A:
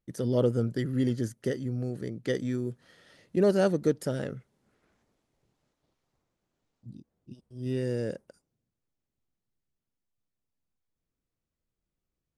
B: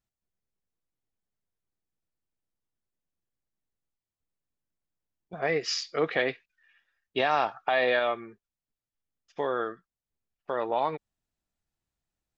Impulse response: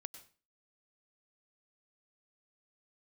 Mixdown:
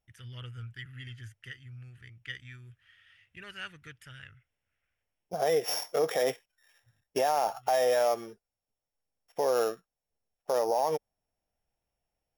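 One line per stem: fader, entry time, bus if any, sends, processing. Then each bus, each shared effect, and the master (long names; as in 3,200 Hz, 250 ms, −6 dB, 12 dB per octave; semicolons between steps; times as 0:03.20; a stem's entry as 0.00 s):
−4.0 dB, 0.00 s, no send, drawn EQ curve 100 Hz 0 dB, 200 Hz −26 dB, 590 Hz −29 dB, 1,500 Hz +1 dB, 2,800 Hz +9 dB, 5,700 Hz −10 dB; automatic ducking −10 dB, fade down 1.35 s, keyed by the second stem
−0.5 dB, 0.00 s, no send, samples sorted by size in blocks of 8 samples; flat-topped bell 630 Hz +9 dB 1.2 octaves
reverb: not used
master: parametric band 4,200 Hz −12 dB 0.3 octaves; brickwall limiter −18 dBFS, peak gain reduction 10 dB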